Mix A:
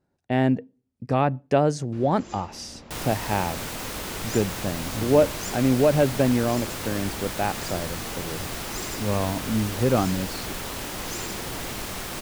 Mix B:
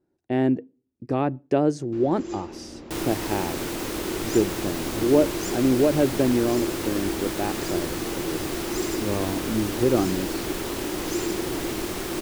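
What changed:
speech -5.5 dB; master: add peaking EQ 340 Hz +15 dB 0.58 oct

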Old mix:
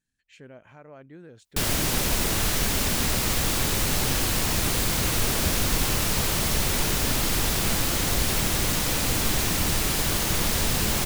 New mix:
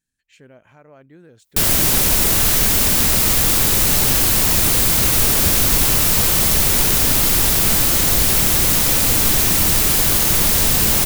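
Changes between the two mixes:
background +5.0 dB; master: add treble shelf 8.9 kHz +10.5 dB

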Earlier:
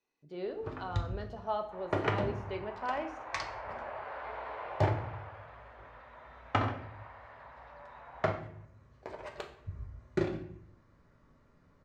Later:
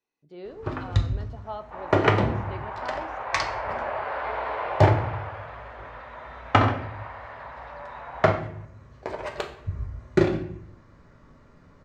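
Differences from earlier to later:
speech: send -6.0 dB; first sound +11.0 dB; second sound +11.5 dB

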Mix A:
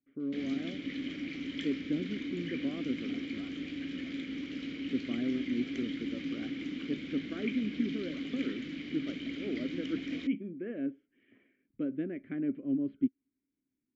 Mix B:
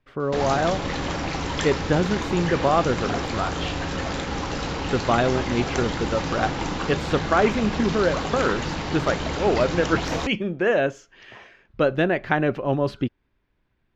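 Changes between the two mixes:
speech: remove low-pass 1.1 kHz 12 dB/octave; master: remove vowel filter i

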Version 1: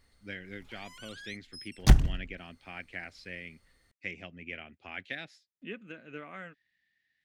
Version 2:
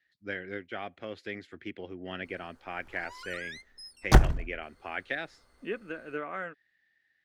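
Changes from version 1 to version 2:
background: entry +2.25 s; master: add high-order bell 740 Hz +9 dB 2.7 oct

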